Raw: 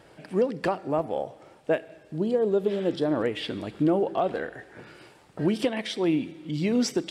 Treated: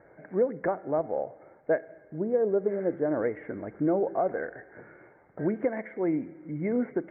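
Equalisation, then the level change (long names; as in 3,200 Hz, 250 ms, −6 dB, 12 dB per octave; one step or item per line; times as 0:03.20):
Chebyshev low-pass with heavy ripple 2,200 Hz, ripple 6 dB
0.0 dB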